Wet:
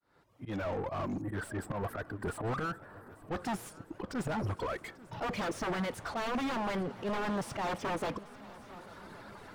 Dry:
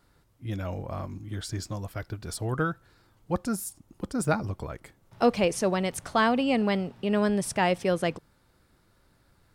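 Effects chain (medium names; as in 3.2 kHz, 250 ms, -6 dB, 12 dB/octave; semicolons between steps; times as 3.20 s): fade-in on the opening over 1.53 s; reverb removal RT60 1.3 s; slow attack 122 ms; in parallel at -2 dB: compression, threshold -37 dBFS, peak gain reduction 16 dB; on the sum: wavefolder -26 dBFS; time-frequency box 1.21–3.28 s, 2–7.5 kHz -25 dB; overdrive pedal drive 29 dB, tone 1 kHz, clips at -25 dBFS; on a send: shuffle delay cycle 1121 ms, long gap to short 3:1, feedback 62%, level -20 dB; on the sum: trim -1.5 dB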